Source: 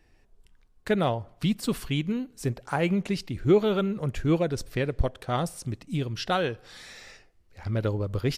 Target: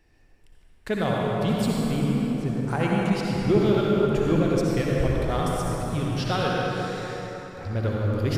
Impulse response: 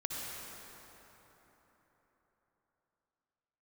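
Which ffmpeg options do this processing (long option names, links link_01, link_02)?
-filter_complex "[0:a]asettb=1/sr,asplit=3[link_01][link_02][link_03];[link_01]atrim=end=1.684[link_04];[link_02]atrim=start=1.68:end=2.68,asetpts=PTS-STARTPTS,afade=type=in:duration=0.004:curve=qsin,afade=type=out:start_time=0.996:duration=0.004:curve=qsin,lowpass=frequency=1400:poles=1[link_05];[link_03]atrim=start=2.676[link_06];[link_04][link_05]acrossfade=duration=0.004:curve1=hsin:curve2=qsin[link_07];[link_07][link_06]acrossfade=duration=0.004:curve1=qsin:curve2=hsin,asplit=2[link_08][link_09];[link_09]asoftclip=type=tanh:threshold=-28dB,volume=-9dB[link_10];[link_08][link_10]amix=inputs=2:normalize=0[link_11];[1:a]atrim=start_sample=2205[link_12];[link_11][link_12]afir=irnorm=-1:irlink=0,volume=-1dB"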